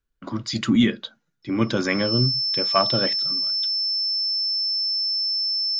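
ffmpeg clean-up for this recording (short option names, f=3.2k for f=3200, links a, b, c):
-af "bandreject=f=5.3k:w=30"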